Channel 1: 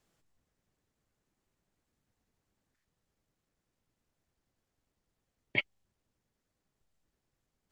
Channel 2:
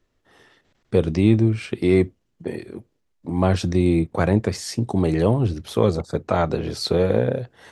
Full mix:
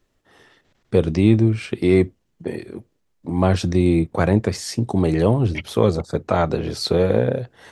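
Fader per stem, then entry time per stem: -1.0 dB, +1.5 dB; 0.00 s, 0.00 s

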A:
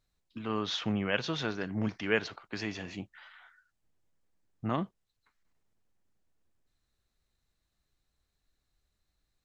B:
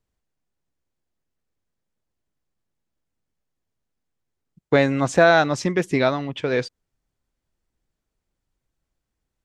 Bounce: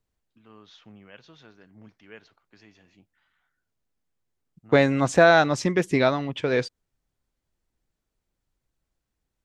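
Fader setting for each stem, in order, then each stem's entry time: -18.0 dB, -1.0 dB; 0.00 s, 0.00 s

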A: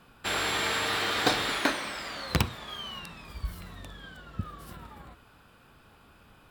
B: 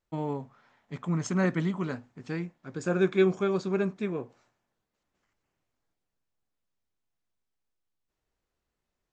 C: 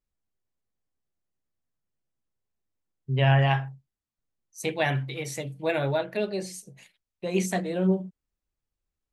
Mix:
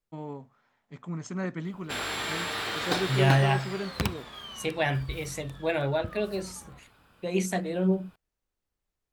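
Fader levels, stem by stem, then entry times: -3.5 dB, -6.5 dB, -1.5 dB; 1.65 s, 0.00 s, 0.00 s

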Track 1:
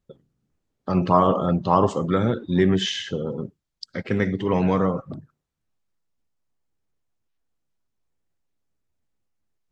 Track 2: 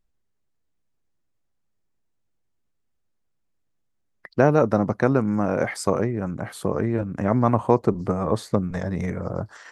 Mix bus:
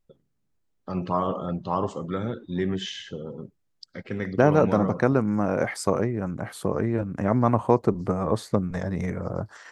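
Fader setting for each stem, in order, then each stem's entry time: -8.0 dB, -1.5 dB; 0.00 s, 0.00 s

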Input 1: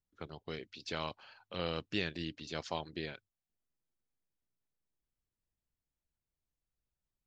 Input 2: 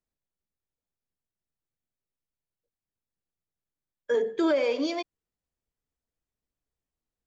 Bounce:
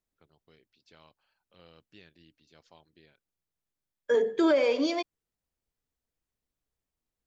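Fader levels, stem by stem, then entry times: -19.5 dB, +1.0 dB; 0.00 s, 0.00 s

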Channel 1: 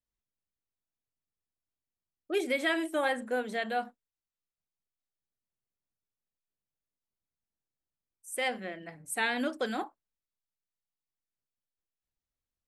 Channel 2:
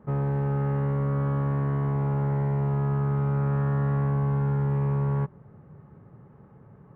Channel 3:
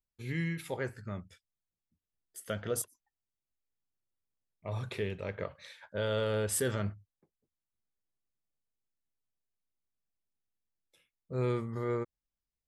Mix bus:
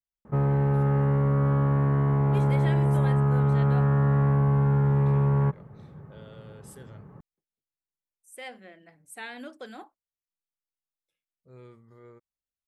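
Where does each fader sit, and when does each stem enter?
-9.5 dB, +3.0 dB, -18.0 dB; 0.00 s, 0.25 s, 0.15 s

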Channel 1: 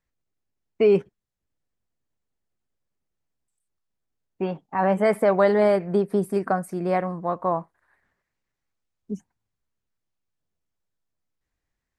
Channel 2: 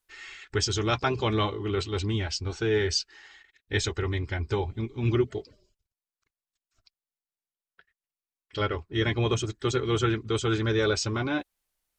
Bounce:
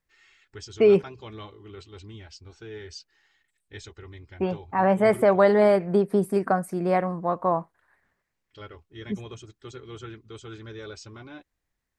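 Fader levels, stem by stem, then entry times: +0.5 dB, -15.0 dB; 0.00 s, 0.00 s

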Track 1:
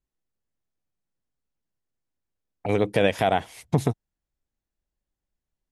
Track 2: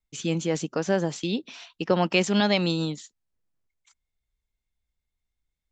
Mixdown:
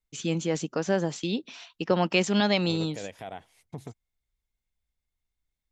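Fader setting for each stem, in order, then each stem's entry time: -18.0 dB, -1.5 dB; 0.00 s, 0.00 s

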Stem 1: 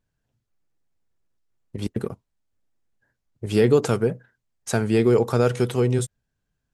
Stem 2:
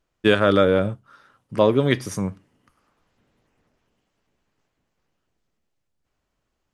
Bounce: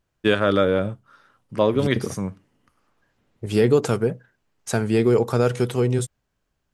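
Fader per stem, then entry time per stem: 0.0 dB, -2.0 dB; 0.00 s, 0.00 s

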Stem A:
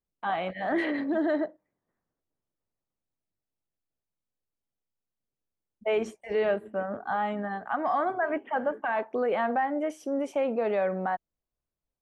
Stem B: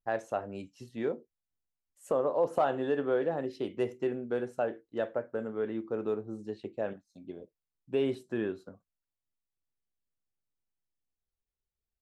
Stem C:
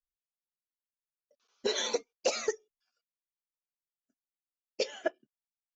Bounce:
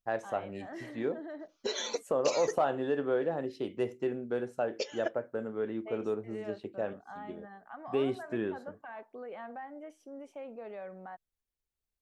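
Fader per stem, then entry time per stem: -16.5 dB, -1.0 dB, -3.5 dB; 0.00 s, 0.00 s, 0.00 s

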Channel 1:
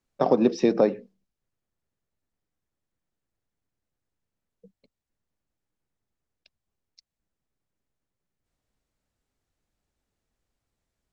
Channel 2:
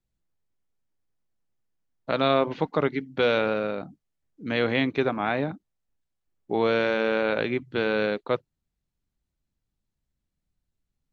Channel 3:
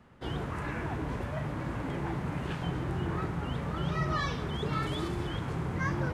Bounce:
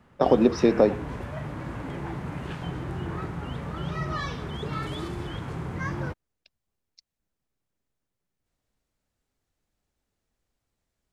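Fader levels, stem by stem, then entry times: +1.0 dB, mute, 0.0 dB; 0.00 s, mute, 0.00 s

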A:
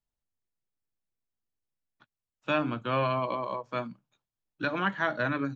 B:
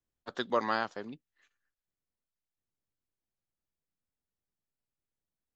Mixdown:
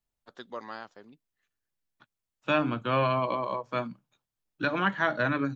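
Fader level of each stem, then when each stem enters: +2.0 dB, -10.0 dB; 0.00 s, 0.00 s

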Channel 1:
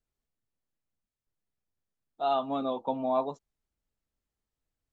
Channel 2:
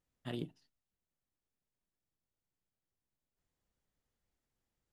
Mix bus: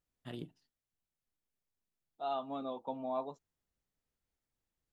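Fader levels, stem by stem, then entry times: -9.0 dB, -4.0 dB; 0.00 s, 0.00 s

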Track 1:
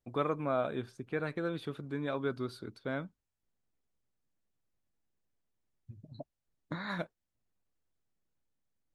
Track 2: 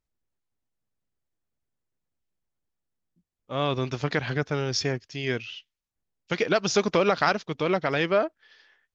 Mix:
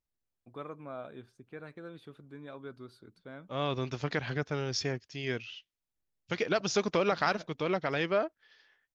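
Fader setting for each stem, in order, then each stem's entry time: -10.5 dB, -6.0 dB; 0.40 s, 0.00 s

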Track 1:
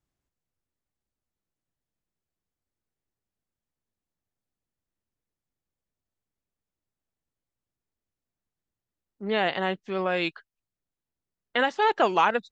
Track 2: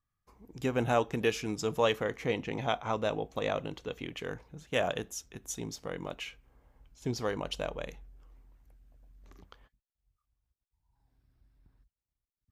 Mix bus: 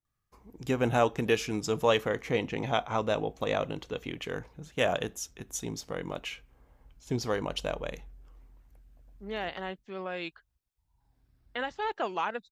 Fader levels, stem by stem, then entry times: -10.0 dB, +2.5 dB; 0.00 s, 0.05 s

